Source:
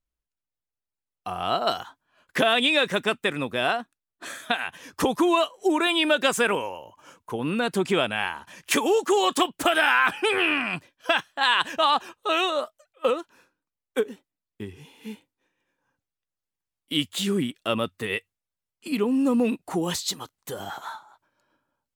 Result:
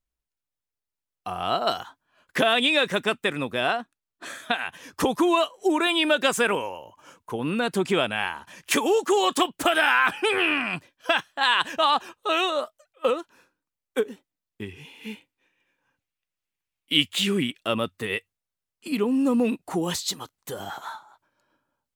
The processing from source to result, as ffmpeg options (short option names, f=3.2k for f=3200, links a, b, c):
-filter_complex "[0:a]asettb=1/sr,asplit=3[a][b][c];[a]atrim=end=3.604[d];[b]atrim=start=3.6:end=4.66,asetpts=PTS-STARTPTS,afade=t=in:d=0.004:c=qsin,afade=t=out:st=1.056:d=0.004:c=qsin,highshelf=f=8.6k:g=-5[e];[c]atrim=start=4.656[f];[d][e]acrossfade=d=0.004:c1=hsin:c2=qsin[g];[g][f]acrossfade=d=0.004:c1=qsin:c2=hsin,asettb=1/sr,asplit=3[h][i][j];[h]atrim=end=14.624[k];[i]atrim=start=14.62:end=17.62,asetpts=PTS-STARTPTS,afade=t=in:d=0.004:c=qsin,afade=t=out:st=2.996:d=0.004:c=qsin,equalizer=f=2.5k:w=1.5:g=9[l];[j]atrim=start=17.616[m];[k][l]acrossfade=d=0.004:c1=hsin:c2=qsin[n];[n][m]acrossfade=d=0.004:c1=qsin:c2=hsin"